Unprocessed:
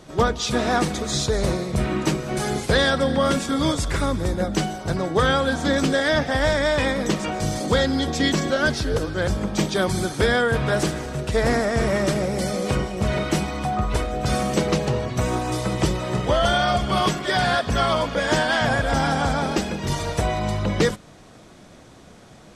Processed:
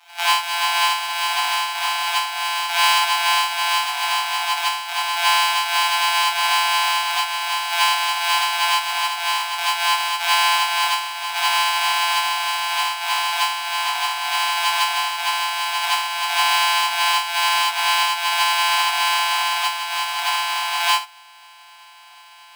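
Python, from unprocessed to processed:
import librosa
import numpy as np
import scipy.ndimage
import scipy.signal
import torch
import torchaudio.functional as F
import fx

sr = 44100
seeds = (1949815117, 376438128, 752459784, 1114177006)

y = np.r_[np.sort(x[:len(x) // 256 * 256].reshape(-1, 256), axis=1).ravel(), x[len(x) // 256 * 256:]]
y = scipy.signal.sosfilt(scipy.signal.cheby1(6, 9, 710.0, 'highpass', fs=sr, output='sos'), y)
y = y + 0.55 * np.pad(y, (int(7.1 * sr / 1000.0), 0))[:len(y)]
y = fx.rev_gated(y, sr, seeds[0], gate_ms=110, shape='rising', drr_db=-8.0)
y = y * 10.0 ** (2.5 / 20.0)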